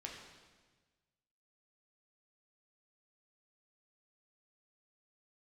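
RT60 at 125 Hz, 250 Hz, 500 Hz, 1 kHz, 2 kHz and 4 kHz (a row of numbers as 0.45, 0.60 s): 1.7, 1.5, 1.4, 1.3, 1.3, 1.3 s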